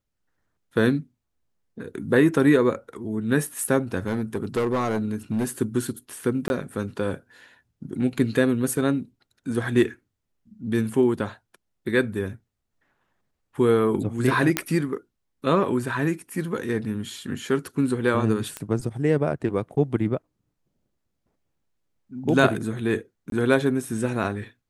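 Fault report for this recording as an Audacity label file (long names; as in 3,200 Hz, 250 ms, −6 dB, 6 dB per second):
4.060000	5.450000	clipping −19.5 dBFS
6.480000	6.500000	drop-out 21 ms
14.570000	14.570000	click −4 dBFS
18.570000	18.570000	click −15 dBFS
23.300000	23.320000	drop-out 22 ms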